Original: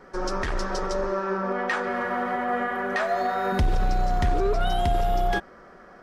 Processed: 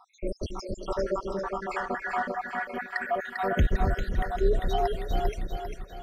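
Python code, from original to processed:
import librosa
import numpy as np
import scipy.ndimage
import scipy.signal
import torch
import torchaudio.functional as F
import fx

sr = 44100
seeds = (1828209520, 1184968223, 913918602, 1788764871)

y = fx.spec_dropout(x, sr, seeds[0], share_pct=79)
y = fx.echo_split(y, sr, split_hz=370.0, low_ms=273, high_ms=397, feedback_pct=52, wet_db=-5.0)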